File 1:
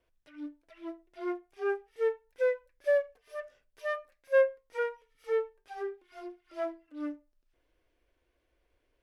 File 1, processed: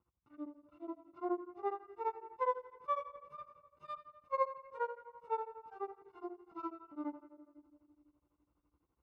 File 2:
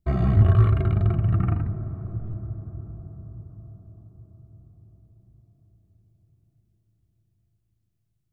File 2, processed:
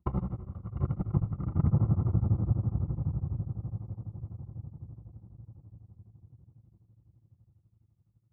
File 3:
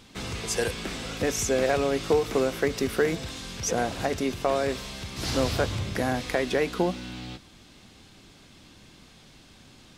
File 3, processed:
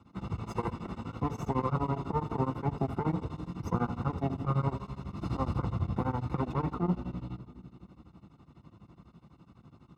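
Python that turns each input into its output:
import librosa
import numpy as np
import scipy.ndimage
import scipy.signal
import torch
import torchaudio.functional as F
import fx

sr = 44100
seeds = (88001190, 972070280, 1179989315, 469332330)

y = fx.lower_of_two(x, sr, delay_ms=0.78)
y = scipy.signal.sosfilt(scipy.signal.butter(4, 58.0, 'highpass', fs=sr, output='sos'), y)
y = fx.peak_eq(y, sr, hz=460.0, db=-4.5, octaves=1.2)
y = fx.over_compress(y, sr, threshold_db=-28.0, ratio=-0.5)
y = scipy.signal.savgol_filter(y, 65, 4, mode='constant')
y = fx.room_shoebox(y, sr, seeds[0], volume_m3=3000.0, walls='mixed', distance_m=0.8)
y = y * np.abs(np.cos(np.pi * 12.0 * np.arange(len(y)) / sr))
y = F.gain(torch.from_numpy(y), 3.0).numpy()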